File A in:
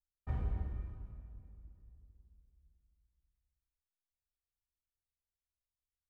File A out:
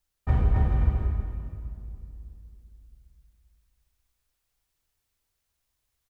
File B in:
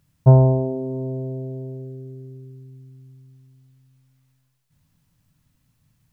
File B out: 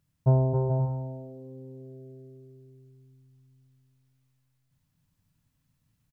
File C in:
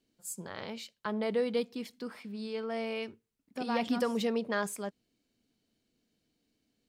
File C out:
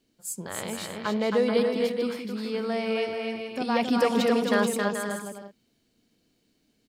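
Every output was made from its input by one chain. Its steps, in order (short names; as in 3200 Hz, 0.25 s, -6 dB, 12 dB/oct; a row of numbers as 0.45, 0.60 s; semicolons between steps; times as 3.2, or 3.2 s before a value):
bouncing-ball echo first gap 0.27 s, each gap 0.6×, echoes 5; match loudness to -27 LUFS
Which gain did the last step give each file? +14.0, -10.0, +6.0 dB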